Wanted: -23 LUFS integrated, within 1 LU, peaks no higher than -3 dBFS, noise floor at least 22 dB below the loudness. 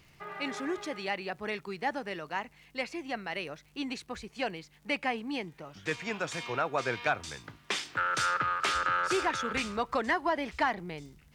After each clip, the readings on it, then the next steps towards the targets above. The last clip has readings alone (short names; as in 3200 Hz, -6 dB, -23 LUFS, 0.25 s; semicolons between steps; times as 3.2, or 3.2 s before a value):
ticks 44/s; loudness -32.5 LUFS; peak -16.0 dBFS; loudness target -23.0 LUFS
-> de-click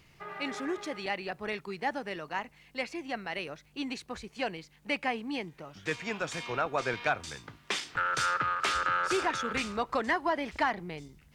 ticks 1.8/s; loudness -32.5 LUFS; peak -16.0 dBFS; loudness target -23.0 LUFS
-> gain +9.5 dB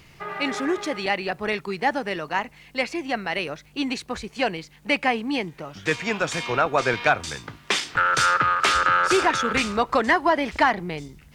loudness -23.0 LUFS; peak -6.5 dBFS; noise floor -52 dBFS